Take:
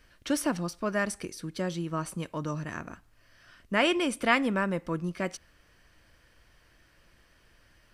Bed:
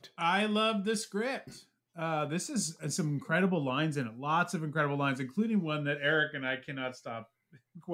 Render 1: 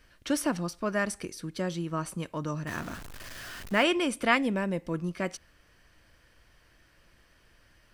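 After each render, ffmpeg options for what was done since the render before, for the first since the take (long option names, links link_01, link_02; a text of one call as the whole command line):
ffmpeg -i in.wav -filter_complex "[0:a]asettb=1/sr,asplit=3[link_01][link_02][link_03];[link_01]atrim=end=2.674[link_04];[link_02]atrim=start=2.67:end=3.83,asetpts=PTS-STARTPTS,afade=type=in:duration=0.004:curve=qsin,afade=type=out:start_time=1.156:duration=0.004:curve=qsin,aeval=exprs='val(0)+0.5*0.0133*sgn(val(0))':channel_layout=same[link_05];[link_03]atrim=start=3.826[link_06];[link_04][link_05]acrossfade=duration=0.004:curve1=hsin:curve2=qsin[link_07];[link_07][link_06]acrossfade=duration=0.004:curve1=qsin:curve2=hsin,asettb=1/sr,asplit=3[link_08][link_09][link_10];[link_08]atrim=end=4.374[link_11];[link_09]atrim=start=4.37:end=4.94,asetpts=PTS-STARTPTS,afade=type=in:duration=0.004:curve=qsin,afade=type=out:start_time=0.566:duration=0.004:curve=qsin,equalizer=frequency=1300:width=2.2:gain=-11.5[link_12];[link_10]atrim=start=4.936[link_13];[link_11][link_12]acrossfade=duration=0.004:curve1=hsin:curve2=qsin[link_14];[link_14][link_13]acrossfade=duration=0.004:curve1=qsin:curve2=hsin" out.wav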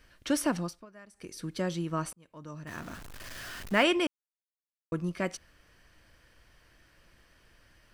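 ffmpeg -i in.wav -filter_complex "[0:a]asplit=6[link_01][link_02][link_03][link_04][link_05][link_06];[link_01]atrim=end=0.86,asetpts=PTS-STARTPTS,afade=type=out:start_time=0.59:duration=0.27:silence=0.0707946[link_07];[link_02]atrim=start=0.86:end=1.14,asetpts=PTS-STARTPTS,volume=-23dB[link_08];[link_03]atrim=start=1.14:end=2.13,asetpts=PTS-STARTPTS,afade=type=in:duration=0.27:silence=0.0707946,afade=type=out:start_time=0.986:duration=0.004:curve=hsin[link_09];[link_04]atrim=start=2.13:end=4.07,asetpts=PTS-STARTPTS,afade=type=in:duration=1.22,afade=type=out:start_time=1.936:duration=0.004:curve=hsin[link_10];[link_05]atrim=start=4.07:end=4.92,asetpts=PTS-STARTPTS,volume=0[link_11];[link_06]atrim=start=4.92,asetpts=PTS-STARTPTS,afade=type=in:duration=0.004:curve=hsin[link_12];[link_07][link_08][link_09][link_10][link_11][link_12]concat=n=6:v=0:a=1" out.wav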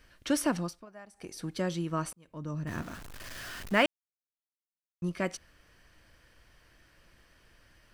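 ffmpeg -i in.wav -filter_complex "[0:a]asettb=1/sr,asplit=3[link_01][link_02][link_03];[link_01]atrim=end=0.874[link_04];[link_02]atrim=start=0.87:end=1.53,asetpts=PTS-STARTPTS,afade=type=in:duration=0.004:curve=qsin,afade=type=out:start_time=0.656:duration=0.004:curve=qsin,equalizer=frequency=760:width_type=o:width=0.41:gain=12.5[link_05];[link_03]atrim=start=1.526[link_06];[link_04][link_05]acrossfade=duration=0.004:curve1=hsin:curve2=qsin[link_07];[link_07][link_06]acrossfade=duration=0.004:curve1=qsin:curve2=hsin,asettb=1/sr,asplit=3[link_08][link_09][link_10];[link_08]atrim=end=2.264[link_11];[link_09]atrim=start=2.26:end=2.82,asetpts=PTS-STARTPTS,afade=type=in:duration=0.004:curve=qsin,afade=type=out:start_time=0.556:duration=0.004:curve=qsin,lowshelf=frequency=390:gain=10[link_12];[link_10]atrim=start=2.816[link_13];[link_11][link_12]acrossfade=duration=0.004:curve1=hsin:curve2=qsin[link_14];[link_14][link_13]acrossfade=duration=0.004:curve1=qsin:curve2=hsin,asplit=3[link_15][link_16][link_17];[link_15]atrim=end=3.86,asetpts=PTS-STARTPTS,afade=type=out:start_time=3.856:duration=0.004:curve=hsin[link_18];[link_16]atrim=start=3.86:end=5.02,asetpts=PTS-STARTPTS,volume=0[link_19];[link_17]atrim=start=5.02,asetpts=PTS-STARTPTS,afade=type=in:duration=0.004:curve=hsin[link_20];[link_18][link_19][link_20]concat=n=3:v=0:a=1" out.wav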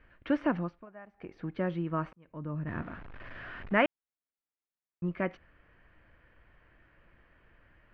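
ffmpeg -i in.wav -af "lowpass=frequency=2400:width=0.5412,lowpass=frequency=2400:width=1.3066" out.wav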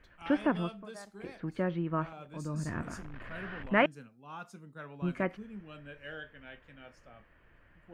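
ffmpeg -i in.wav -i bed.wav -filter_complex "[1:a]volume=-16dB[link_01];[0:a][link_01]amix=inputs=2:normalize=0" out.wav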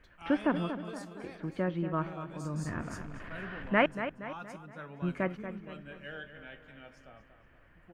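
ffmpeg -i in.wav -filter_complex "[0:a]asplit=2[link_01][link_02];[link_02]adelay=235,lowpass=frequency=4000:poles=1,volume=-10dB,asplit=2[link_03][link_04];[link_04]adelay=235,lowpass=frequency=4000:poles=1,volume=0.5,asplit=2[link_05][link_06];[link_06]adelay=235,lowpass=frequency=4000:poles=1,volume=0.5,asplit=2[link_07][link_08];[link_08]adelay=235,lowpass=frequency=4000:poles=1,volume=0.5,asplit=2[link_09][link_10];[link_10]adelay=235,lowpass=frequency=4000:poles=1,volume=0.5[link_11];[link_01][link_03][link_05][link_07][link_09][link_11]amix=inputs=6:normalize=0" out.wav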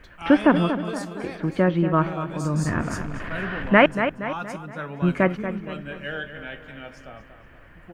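ffmpeg -i in.wav -af "volume=12dB,alimiter=limit=-3dB:level=0:latency=1" out.wav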